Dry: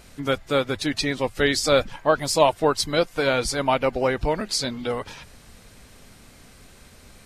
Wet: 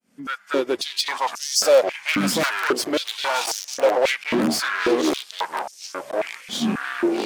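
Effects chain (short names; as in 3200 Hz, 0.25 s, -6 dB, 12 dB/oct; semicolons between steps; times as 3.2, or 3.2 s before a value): opening faded in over 1.16 s; notch 3900 Hz, Q 5.8; wrapped overs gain 8 dB; echoes that change speed 0.121 s, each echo -6 st, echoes 3, each echo -6 dB; one-sided clip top -36 dBFS, bottom -20.5 dBFS; stepped high-pass 3.7 Hz 220–5800 Hz; gain +4.5 dB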